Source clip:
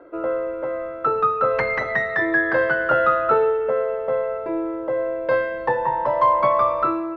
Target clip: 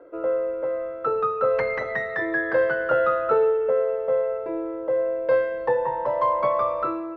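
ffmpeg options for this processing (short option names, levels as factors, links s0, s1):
-af "equalizer=f=490:w=3.2:g=8,volume=0.501"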